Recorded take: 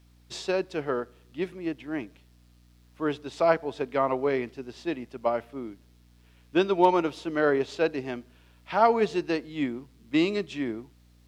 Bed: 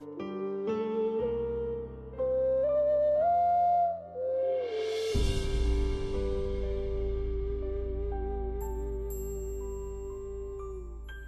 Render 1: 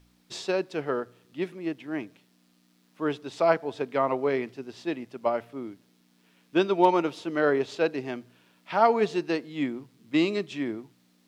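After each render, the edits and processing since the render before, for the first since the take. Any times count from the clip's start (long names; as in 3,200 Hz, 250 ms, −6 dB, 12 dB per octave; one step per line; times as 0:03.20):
hum removal 60 Hz, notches 2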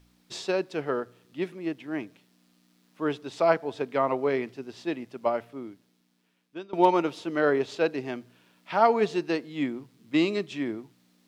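0:05.29–0:06.73: fade out, to −23 dB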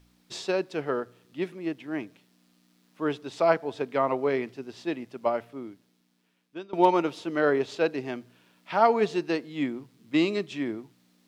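no processing that can be heard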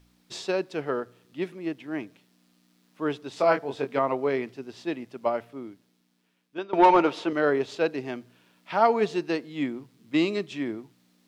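0:03.34–0:03.99: double-tracking delay 22 ms −4.5 dB
0:06.58–0:07.33: mid-hump overdrive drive 18 dB, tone 1,600 Hz, clips at −7 dBFS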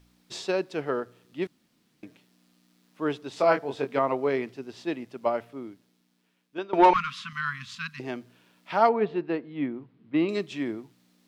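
0:01.47–0:02.03: fill with room tone
0:06.93–0:08.00: linear-phase brick-wall band-stop 240–1,000 Hz
0:08.89–0:10.29: high-frequency loss of the air 450 metres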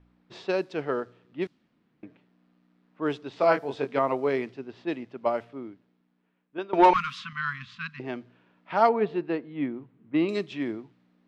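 low-pass that shuts in the quiet parts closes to 1,700 Hz, open at −21 dBFS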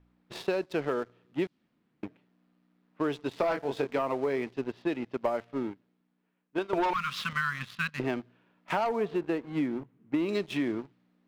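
leveller curve on the samples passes 2
downward compressor 10 to 1, threshold −26 dBFS, peak gain reduction 15 dB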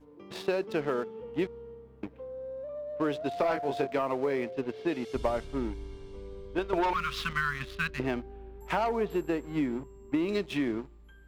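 mix in bed −12 dB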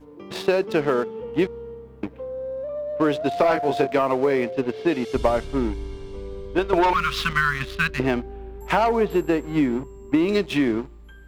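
level +9 dB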